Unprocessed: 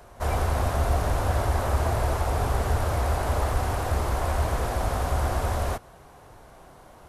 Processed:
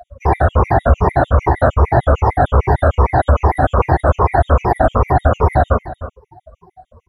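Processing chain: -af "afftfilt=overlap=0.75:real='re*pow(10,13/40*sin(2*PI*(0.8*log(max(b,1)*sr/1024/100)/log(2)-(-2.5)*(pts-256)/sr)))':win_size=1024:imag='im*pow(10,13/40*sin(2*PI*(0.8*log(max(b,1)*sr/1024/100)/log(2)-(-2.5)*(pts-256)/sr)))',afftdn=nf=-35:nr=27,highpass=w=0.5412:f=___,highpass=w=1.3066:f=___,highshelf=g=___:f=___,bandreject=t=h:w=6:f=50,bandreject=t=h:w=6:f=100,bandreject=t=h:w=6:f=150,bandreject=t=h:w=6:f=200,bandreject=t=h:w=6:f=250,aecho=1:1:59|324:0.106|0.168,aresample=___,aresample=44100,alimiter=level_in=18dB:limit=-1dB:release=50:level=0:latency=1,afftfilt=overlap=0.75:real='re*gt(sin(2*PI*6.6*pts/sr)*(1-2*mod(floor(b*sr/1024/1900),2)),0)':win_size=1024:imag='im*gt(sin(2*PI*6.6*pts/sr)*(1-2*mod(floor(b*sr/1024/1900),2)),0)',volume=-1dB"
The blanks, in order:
55, 55, -11, 3900, 32000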